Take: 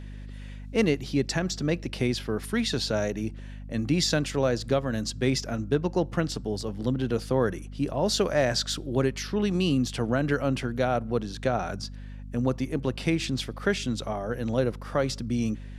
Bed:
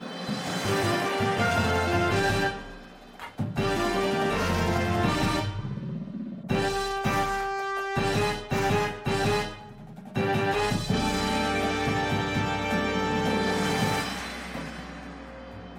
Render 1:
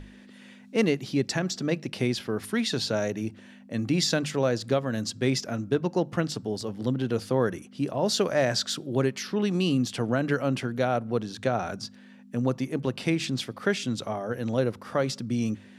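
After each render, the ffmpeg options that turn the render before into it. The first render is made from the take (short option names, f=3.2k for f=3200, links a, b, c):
-af "bandreject=f=50:t=h:w=6,bandreject=f=100:t=h:w=6,bandreject=f=150:t=h:w=6"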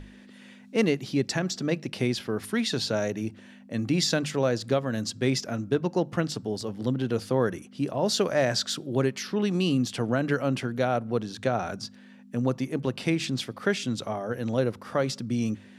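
-af anull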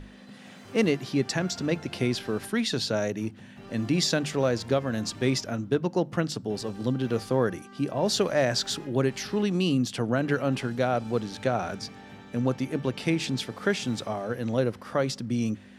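-filter_complex "[1:a]volume=-21dB[a];[0:a][a]amix=inputs=2:normalize=0"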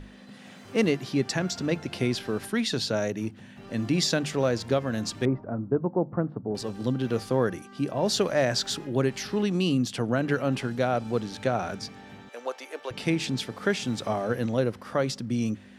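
-filter_complex "[0:a]asettb=1/sr,asplit=3[a][b][c];[a]atrim=end=5.254[d];[b]atrim=start=5.25:end=6.55,asetpts=PTS-STARTPTS,afade=t=in:d=0.004:c=qsin,afade=t=out:st=1.296:d=0.004:c=qsin,lowpass=f=1.2k:w=0.5412,lowpass=f=1.2k:w=1.3066[e];[c]atrim=start=6.546[f];[d][e]acrossfade=d=0.004:c1=hsin:c2=qsin[g];[g][f]acrossfade=d=0.004:c1=qsin:c2=hsin,asettb=1/sr,asplit=3[h][i][j];[h]atrim=end=12.294[k];[i]atrim=start=12.29:end=12.91,asetpts=PTS-STARTPTS,afade=t=in:d=0.004:c=qsin,afade=t=out:st=0.616:d=0.004:c=qsin,highpass=f=500:w=0.5412,highpass=f=500:w=1.3066[l];[j]atrim=start=12.906[m];[k][l]acrossfade=d=0.004:c1=hsin:c2=qsin[n];[n][m]acrossfade=d=0.004:c1=qsin:c2=hsin,asplit=3[o][p][q];[o]atrim=end=14.042[r];[p]atrim=start=14.038:end=14.462,asetpts=PTS-STARTPTS,volume=3.5dB[s];[q]atrim=start=14.458[t];[r][s]acrossfade=d=0.004:c1=hsin:c2=hsin[u];[u][t]acrossfade=d=0.004:c1=hsin:c2=hsin"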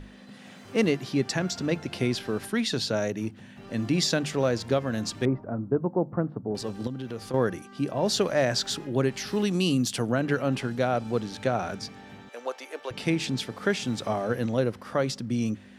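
-filter_complex "[0:a]asettb=1/sr,asplit=3[a][b][c];[a]atrim=end=6.874[d];[b]atrim=start=6.87:end=7.34,asetpts=PTS-STARTPTS,afade=t=in:d=0.004:c=qsin,afade=t=out:st=0.466:d=0.004:c=qsin,acompressor=threshold=-34dB:ratio=2.5:attack=3.2:release=140:knee=1:detection=peak[e];[c]atrim=start=7.336[f];[d][e]acrossfade=d=0.004:c1=hsin:c2=qsin[g];[g][f]acrossfade=d=0.004:c1=qsin:c2=hsin,asettb=1/sr,asplit=3[h][i][j];[h]atrim=end=9.274[k];[i]atrim=start=9.27:end=10.12,asetpts=PTS-STARTPTS,afade=t=in:d=0.004:c=qsin,afade=t=out:st=0.846:d=0.004:c=qsin,highshelf=f=5.7k:g=11[l];[j]atrim=start=10.116[m];[k][l]acrossfade=d=0.004:c1=hsin:c2=qsin[n];[n][m]acrossfade=d=0.004:c1=qsin:c2=hsin"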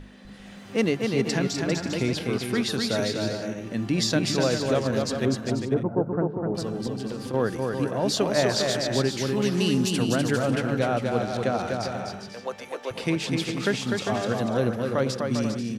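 -af "aecho=1:1:250|400|490|544|576.4:0.631|0.398|0.251|0.158|0.1"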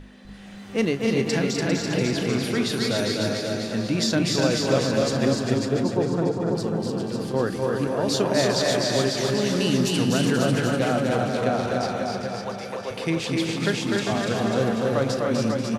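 -filter_complex "[0:a]asplit=2[a][b];[b]adelay=36,volume=-13.5dB[c];[a][c]amix=inputs=2:normalize=0,aecho=1:1:290|551|785.9|997.3|1188:0.631|0.398|0.251|0.158|0.1"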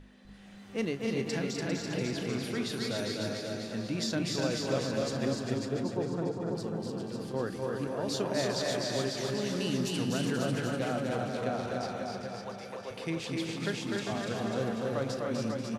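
-af "volume=-9.5dB"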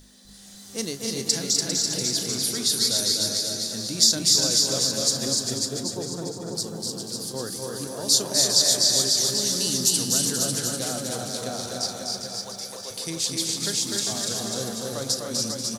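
-af "aexciter=amount=8.7:drive=7.2:freq=3.9k"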